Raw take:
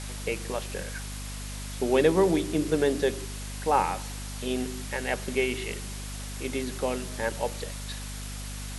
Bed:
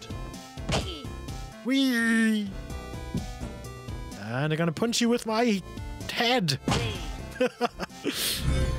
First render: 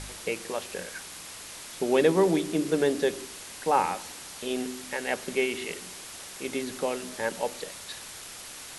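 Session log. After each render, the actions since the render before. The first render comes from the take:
hum removal 50 Hz, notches 5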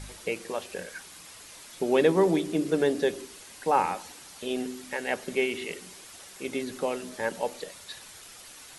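broadband denoise 7 dB, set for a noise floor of −43 dBFS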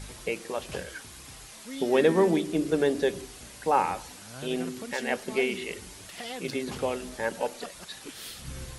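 mix in bed −14.5 dB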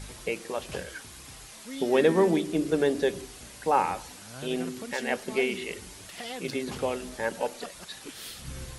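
no processing that can be heard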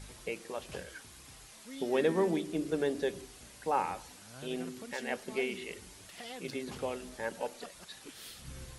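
level −7 dB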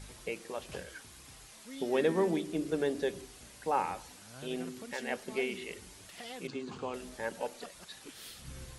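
0:06.47–0:06.94: loudspeaker in its box 100–6,900 Hz, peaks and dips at 580 Hz −8 dB, 1,100 Hz +5 dB, 2,000 Hz −9 dB, 3,500 Hz −4 dB, 5,500 Hz −7 dB

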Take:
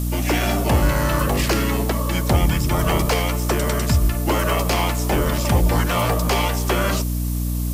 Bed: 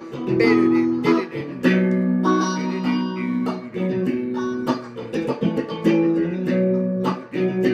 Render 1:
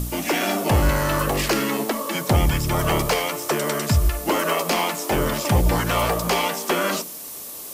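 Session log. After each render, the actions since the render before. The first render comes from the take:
hum removal 60 Hz, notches 5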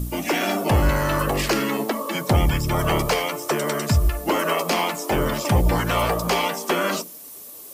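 broadband denoise 8 dB, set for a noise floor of −36 dBFS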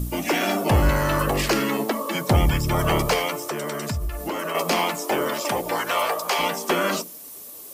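0:03.41–0:04.55: downward compressor 3 to 1, threshold −26 dBFS
0:05.05–0:06.38: high-pass filter 260 Hz → 630 Hz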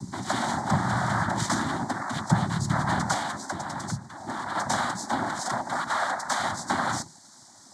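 cochlear-implant simulation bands 6
phaser with its sweep stopped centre 1,100 Hz, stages 4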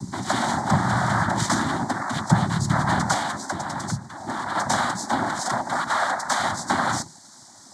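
level +4 dB

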